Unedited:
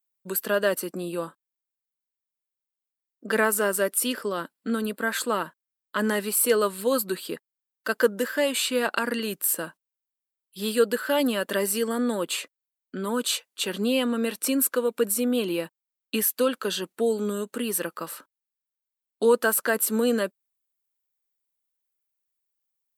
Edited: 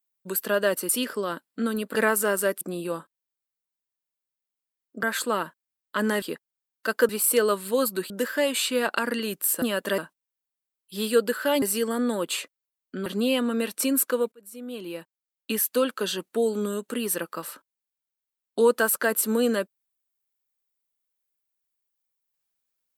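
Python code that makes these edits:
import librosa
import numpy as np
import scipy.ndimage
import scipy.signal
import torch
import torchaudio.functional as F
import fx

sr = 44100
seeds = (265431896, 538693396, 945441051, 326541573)

y = fx.edit(x, sr, fx.swap(start_s=0.89, length_s=2.42, other_s=3.97, other_length_s=1.06),
    fx.move(start_s=7.23, length_s=0.87, to_s=6.22),
    fx.move(start_s=11.26, length_s=0.36, to_s=9.62),
    fx.cut(start_s=13.06, length_s=0.64),
    fx.fade_in_span(start_s=14.96, length_s=1.46), tone=tone)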